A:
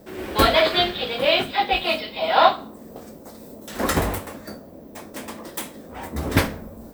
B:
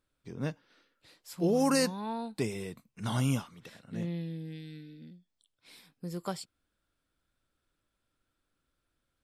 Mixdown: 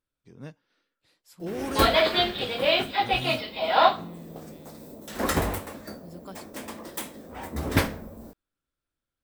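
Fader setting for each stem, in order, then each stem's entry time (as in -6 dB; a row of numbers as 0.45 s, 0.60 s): -3.5 dB, -7.5 dB; 1.40 s, 0.00 s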